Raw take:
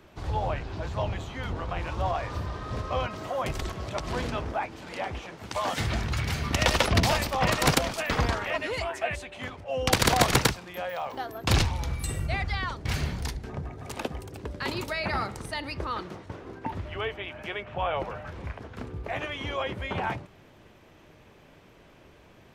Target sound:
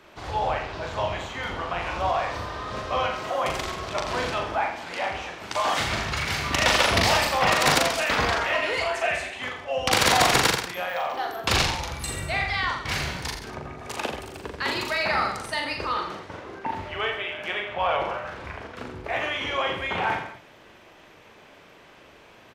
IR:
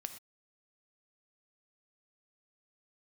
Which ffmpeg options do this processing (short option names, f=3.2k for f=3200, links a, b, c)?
-filter_complex "[0:a]aecho=1:1:40|84|132.4|185.6|244.2:0.631|0.398|0.251|0.158|0.1,asplit=2[a][b];[b]highpass=f=720:p=1,volume=13dB,asoftclip=type=tanh:threshold=-5.5dB[c];[a][c]amix=inputs=2:normalize=0,lowpass=f=6.6k:p=1,volume=-6dB,volume=-2.5dB"